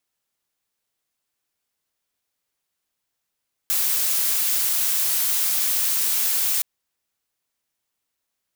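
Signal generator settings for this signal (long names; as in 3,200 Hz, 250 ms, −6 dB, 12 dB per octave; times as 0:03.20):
noise blue, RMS −21.5 dBFS 2.92 s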